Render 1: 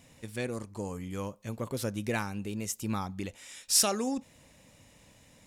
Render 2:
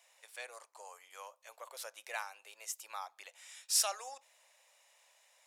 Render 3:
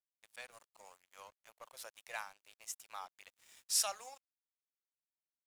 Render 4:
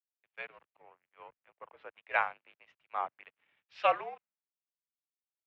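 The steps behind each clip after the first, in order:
steep high-pass 620 Hz 36 dB/octave; trim -5.5 dB
crossover distortion -54 dBFS; trim -2 dB
mistuned SSB -57 Hz 160–2800 Hz; three bands expanded up and down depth 100%; trim +6.5 dB

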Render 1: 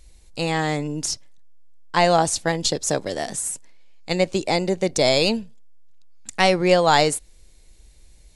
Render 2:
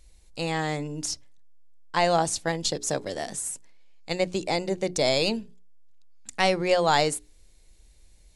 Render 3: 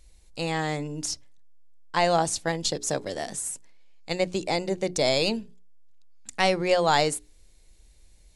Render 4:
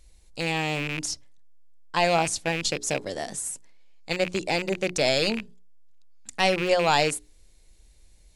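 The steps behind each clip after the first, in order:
hum notches 60/120/180/240/300/360/420 Hz; trim -5 dB
no audible change
rattle on loud lows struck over -35 dBFS, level -19 dBFS

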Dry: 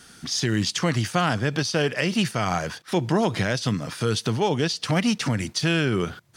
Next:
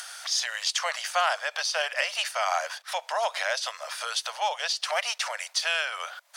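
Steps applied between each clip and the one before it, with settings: steep high-pass 570 Hz 72 dB/octave; upward compressor, threshold -32 dBFS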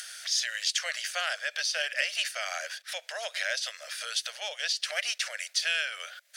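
FFT filter 590 Hz 0 dB, 960 Hz -17 dB, 1.6 kHz +5 dB; trim -6 dB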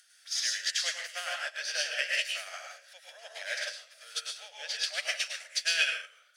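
reverberation RT60 0.65 s, pre-delay 93 ms, DRR -2.5 dB; upward expansion 2.5:1, over -37 dBFS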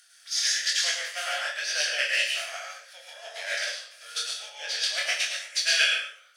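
gated-style reverb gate 160 ms falling, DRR 2.5 dB; chorus 1.1 Hz, delay 20 ms, depth 7.8 ms; trim +6.5 dB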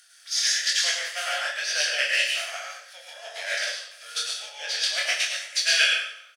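feedback delay 91 ms, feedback 48%, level -17 dB; trim +2 dB

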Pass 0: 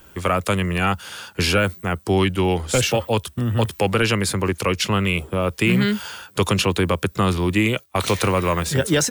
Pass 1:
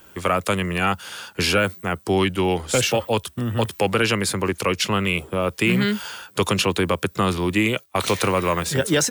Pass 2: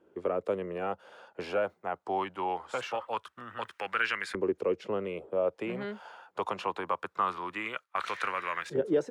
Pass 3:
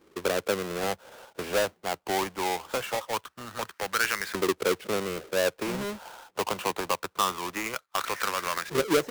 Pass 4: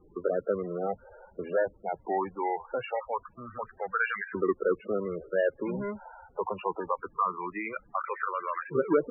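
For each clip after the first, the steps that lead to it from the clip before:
bass shelf 86 Hz -11.5 dB
LFO band-pass saw up 0.23 Hz 390–1800 Hz; trim -2.5 dB
square wave that keeps the level
added noise pink -56 dBFS; loudest bins only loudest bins 16; brick-wall FIR low-pass 2.9 kHz

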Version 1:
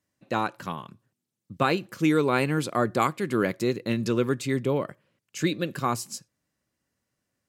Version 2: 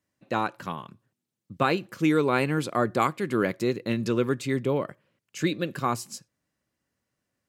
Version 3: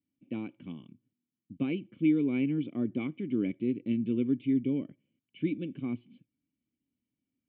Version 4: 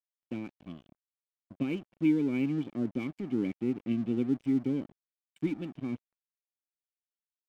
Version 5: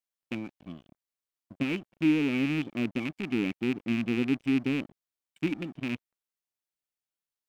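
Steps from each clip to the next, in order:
tone controls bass -1 dB, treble -3 dB
cascade formant filter i; trim +3.5 dB
crossover distortion -48.5 dBFS
rattle on loud lows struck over -35 dBFS, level -26 dBFS; trim +1.5 dB

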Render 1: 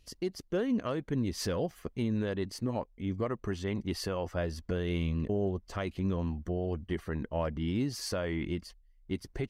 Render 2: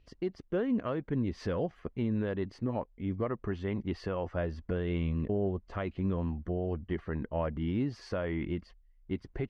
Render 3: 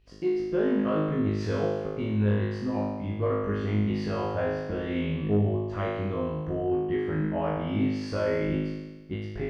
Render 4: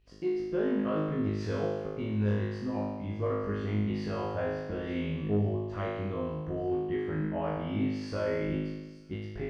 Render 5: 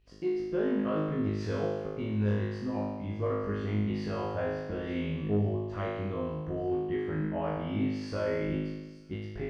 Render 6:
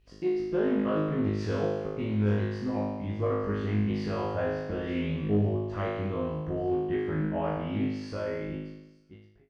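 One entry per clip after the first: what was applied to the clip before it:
low-pass 2.4 kHz 12 dB/octave
on a send: flutter echo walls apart 3.3 m, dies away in 1.2 s; on the sum: saturation -13 dBFS, distortion -26 dB
feedback echo behind a high-pass 877 ms, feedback 62%, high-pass 4.8 kHz, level -14 dB; trim -4 dB
no audible change
fade out at the end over 2.07 s; loudspeaker Doppler distortion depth 0.21 ms; trim +2.5 dB

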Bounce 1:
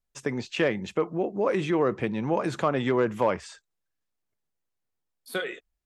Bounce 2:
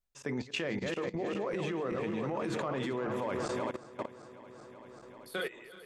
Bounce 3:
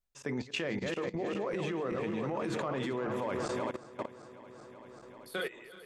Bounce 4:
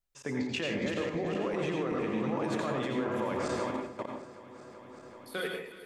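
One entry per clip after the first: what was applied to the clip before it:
backward echo that repeats 192 ms, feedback 79%, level -9 dB; hum notches 60/120/180/240/300/360/420/480 Hz; level held to a coarse grid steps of 17 dB
no audible change
reverberation RT60 0.45 s, pre-delay 81 ms, DRR 2 dB

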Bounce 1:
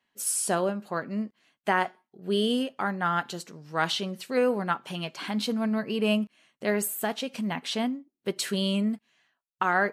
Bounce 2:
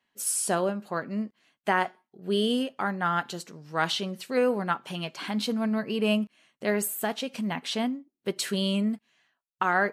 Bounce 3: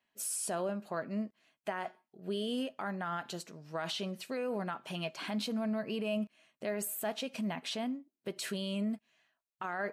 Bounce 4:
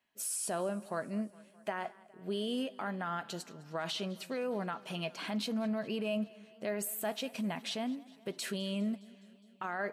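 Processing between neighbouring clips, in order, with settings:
no audible change
peak limiter -22.5 dBFS, peak gain reduction 11 dB; small resonant body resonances 640/2500 Hz, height 8 dB; trim -5 dB
modulated delay 206 ms, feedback 66%, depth 78 cents, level -22 dB

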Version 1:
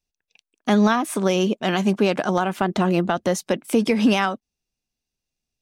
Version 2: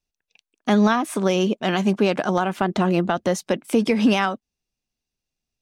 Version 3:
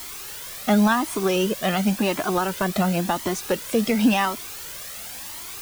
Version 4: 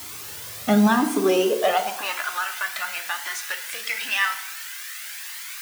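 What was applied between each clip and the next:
treble shelf 9.1 kHz -5.5 dB
added noise white -35 dBFS; Shepard-style flanger rising 0.93 Hz; trim +3.5 dB
high-pass sweep 92 Hz -> 1.7 kHz, 0.61–2.28 s; FDN reverb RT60 0.82 s, low-frequency decay 1.1×, high-frequency decay 0.75×, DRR 5 dB; trim -1.5 dB

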